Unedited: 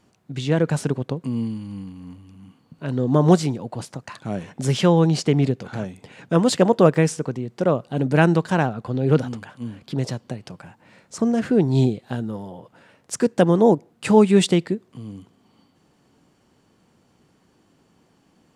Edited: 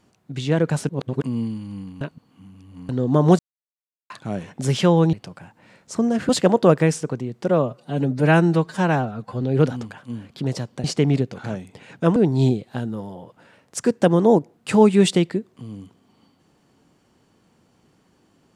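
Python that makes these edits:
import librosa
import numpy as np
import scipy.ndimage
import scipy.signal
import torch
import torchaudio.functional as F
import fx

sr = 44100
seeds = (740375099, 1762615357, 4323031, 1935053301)

y = fx.edit(x, sr, fx.reverse_span(start_s=0.89, length_s=0.33),
    fx.reverse_span(start_s=2.01, length_s=0.88),
    fx.silence(start_s=3.39, length_s=0.71),
    fx.swap(start_s=5.13, length_s=1.32, other_s=10.36, other_length_s=1.16),
    fx.stretch_span(start_s=7.65, length_s=1.28, factor=1.5), tone=tone)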